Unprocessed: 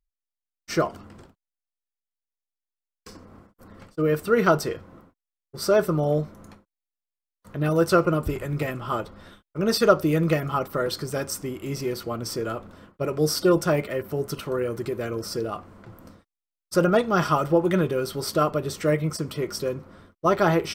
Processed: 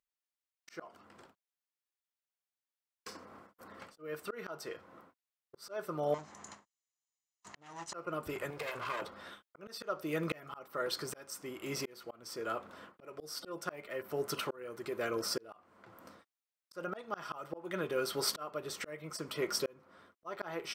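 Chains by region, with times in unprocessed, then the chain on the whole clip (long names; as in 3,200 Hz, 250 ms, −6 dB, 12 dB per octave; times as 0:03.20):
0:06.14–0:07.94: lower of the sound and its delayed copy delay 1 ms + low-pass with resonance 6,900 Hz, resonance Q 6.6 + downward compressor 2 to 1, threshold −39 dBFS
0:08.50–0:09.02: lower of the sound and its delayed copy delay 1.9 ms + downward compressor 10 to 1, threshold −32 dBFS
whole clip: high-pass filter 1,100 Hz 6 dB per octave; high-shelf EQ 2,800 Hz −7.5 dB; volume swells 697 ms; level +4.5 dB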